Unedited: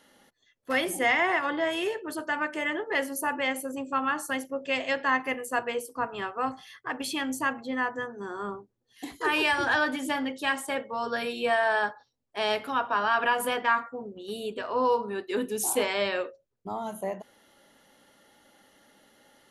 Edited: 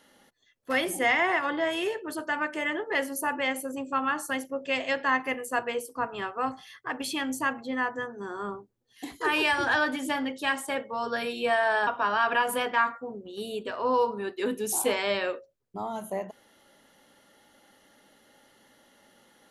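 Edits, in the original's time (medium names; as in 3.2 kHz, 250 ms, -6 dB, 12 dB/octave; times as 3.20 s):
11.87–12.78 s: delete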